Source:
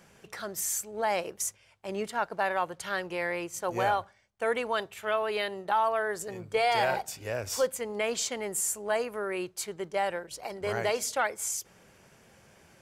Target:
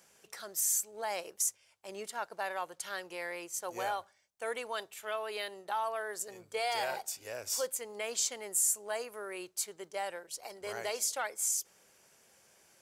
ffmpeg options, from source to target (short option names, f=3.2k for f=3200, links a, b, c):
-af "bass=f=250:g=-11,treble=f=4k:g=10,volume=-8dB"